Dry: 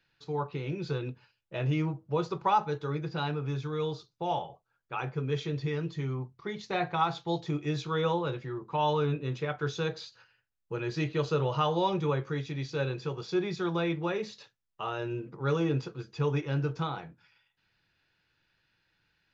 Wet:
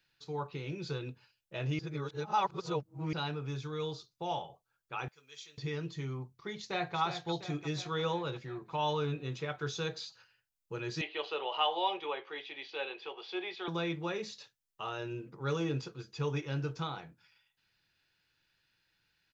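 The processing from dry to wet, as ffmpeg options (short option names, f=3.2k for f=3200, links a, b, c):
-filter_complex "[0:a]asettb=1/sr,asplit=3[a][b][c];[a]atrim=end=5.084[d];[b]atrim=start=5.08:end=5.58,asetpts=PTS-STARTPTS,afade=t=in:d=0.004:c=qsin,afade=t=out:st=0.496:d=0.004:c=qsin,aderivative[e];[c]atrim=start=5.576[f];[d][e]acrossfade=d=0.004:c1=hsin:c2=qsin[g];[g][f]acrossfade=d=0.004:c1=qsin:c2=hsin,asplit=2[h][i];[i]afade=t=in:st=6.56:d=0.01,afade=t=out:st=6.97:d=0.01,aecho=0:1:350|700|1050|1400|1750|2100|2450|2800|3150:0.354813|0.230629|0.149909|0.0974406|0.0633364|0.0411687|0.0267596|0.0173938|0.0113059[j];[h][j]amix=inputs=2:normalize=0,asettb=1/sr,asplit=3[k][l][m];[k]atrim=end=11.014[n];[l]atrim=start=11.01:end=13.68,asetpts=PTS-STARTPTS,afade=t=in:d=0.004:c=qsin,afade=t=out:st=2.666:d=0.004:c=qsin,highpass=f=390:w=0.5412,highpass=f=390:w=1.3066,equalizer=f=500:t=q:w=4:g=-4,equalizer=f=780:t=q:w=4:g=8,equalizer=f=1.4k:t=q:w=4:g=-4,equalizer=f=2.1k:t=q:w=4:g=4,equalizer=f=3k:t=q:w=4:g=9,lowpass=f=3.7k:w=0.5412,lowpass=f=3.7k:w=1.3066[o];[m]atrim=start=13.676[p];[n][o]acrossfade=d=0.004:c1=hsin:c2=qsin[q];[q][p]acrossfade=d=0.004:c1=qsin:c2=hsin,asplit=3[r][s][t];[r]atrim=end=1.792[u];[s]atrim=start=1.788:end=3.132,asetpts=PTS-STARTPTS,areverse[v];[t]atrim=start=3.128[w];[u][v]acrossfade=d=0.004:c1=hsin:c2=hsin[x];[x][w]acrossfade=d=0.004:c1=hsin:c2=hsin,highshelf=f=3.5k:g=10.5,volume=-5.5dB"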